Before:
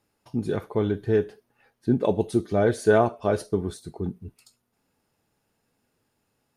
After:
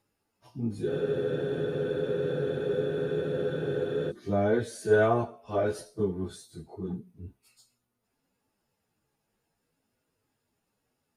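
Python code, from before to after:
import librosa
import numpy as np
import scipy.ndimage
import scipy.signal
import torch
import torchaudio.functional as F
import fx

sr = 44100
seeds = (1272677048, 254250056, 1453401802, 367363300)

y = fx.stretch_vocoder_free(x, sr, factor=1.7)
y = fx.spec_freeze(y, sr, seeds[0], at_s=0.9, hold_s=3.19)
y = y * 10.0 ** (-2.5 / 20.0)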